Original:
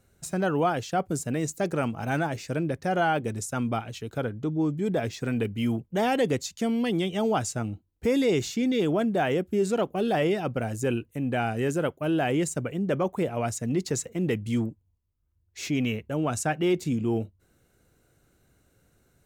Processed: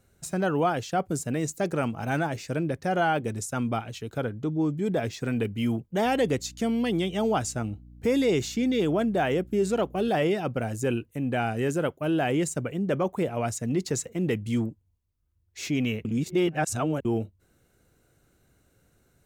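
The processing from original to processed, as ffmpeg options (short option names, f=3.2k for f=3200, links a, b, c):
-filter_complex "[0:a]asettb=1/sr,asplit=3[a][b][c];[a]atrim=end=6.054[d];[b]atrim=start=6.05:end=10.09,asetpts=PTS-STARTPTS,afade=t=in:d=0.004:c=qsin,afade=t=out:st=4.036:d=0.004:c=qsin,aeval=exprs='val(0)+0.00447*(sin(2*PI*60*n/s)+sin(2*PI*2*60*n/s)/2+sin(2*PI*3*60*n/s)/3+sin(2*PI*4*60*n/s)/4+sin(2*PI*5*60*n/s)/5)':c=same[e];[c]atrim=start=10.086[f];[d][e]acrossfade=d=0.004:c1=hsin:c2=qsin[g];[g][f]acrossfade=d=0.004:c1=qsin:c2=hsin,asplit=3[h][i][j];[h]atrim=end=16.052[k];[i]atrim=start=16.048:end=17.052,asetpts=PTS-STARTPTS,areverse[l];[j]atrim=start=17.048[m];[k][l]acrossfade=d=0.004:c1=hsin:c2=hsin[n];[n][m]acrossfade=d=0.004:c1=hsin:c2=hsin"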